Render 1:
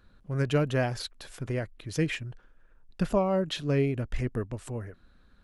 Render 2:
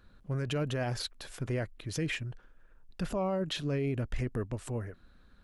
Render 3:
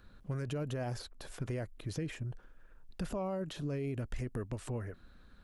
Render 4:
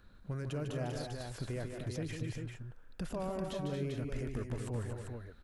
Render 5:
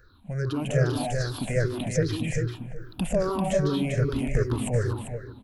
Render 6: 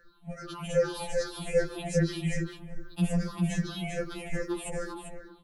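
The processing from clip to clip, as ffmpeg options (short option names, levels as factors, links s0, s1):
-af "alimiter=level_in=1.06:limit=0.0631:level=0:latency=1:release=38,volume=0.944"
-filter_complex "[0:a]acrossover=split=1200|5700[s0][s1][s2];[s0]acompressor=threshold=0.0158:ratio=4[s3];[s1]acompressor=threshold=0.00178:ratio=4[s4];[s2]acompressor=threshold=0.00158:ratio=4[s5];[s3][s4][s5]amix=inputs=3:normalize=0,volume=1.19"
-af "aecho=1:1:150|226|245|394:0.447|0.376|0.282|0.531,volume=0.794"
-filter_complex "[0:a]afftfilt=real='re*pow(10,20/40*sin(2*PI*(0.55*log(max(b,1)*sr/1024/100)/log(2)-(-2.5)*(pts-256)/sr)))':imag='im*pow(10,20/40*sin(2*PI*(0.55*log(max(b,1)*sr/1024/100)/log(2)-(-2.5)*(pts-256)/sr)))':win_size=1024:overlap=0.75,dynaudnorm=f=140:g=7:m=2.82,asplit=2[s0][s1];[s1]adelay=379,lowpass=f=1000:p=1,volume=0.158,asplit=2[s2][s3];[s3]adelay=379,lowpass=f=1000:p=1,volume=0.55,asplit=2[s4][s5];[s5]adelay=379,lowpass=f=1000:p=1,volume=0.55,asplit=2[s6][s7];[s7]adelay=379,lowpass=f=1000:p=1,volume=0.55,asplit=2[s8][s9];[s9]adelay=379,lowpass=f=1000:p=1,volume=0.55[s10];[s0][s2][s4][s6][s8][s10]amix=inputs=6:normalize=0"
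-af "afftfilt=real='re*2.83*eq(mod(b,8),0)':imag='im*2.83*eq(mod(b,8),0)':win_size=2048:overlap=0.75"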